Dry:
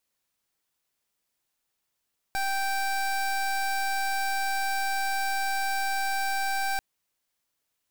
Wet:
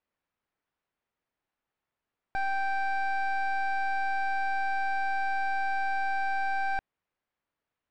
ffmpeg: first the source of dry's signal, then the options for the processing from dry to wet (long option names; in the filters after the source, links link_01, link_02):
-f lavfi -i "aevalsrc='0.0422*(2*lt(mod(782*t,1),0.24)-1)':duration=4.44:sample_rate=44100"
-af "lowpass=2000"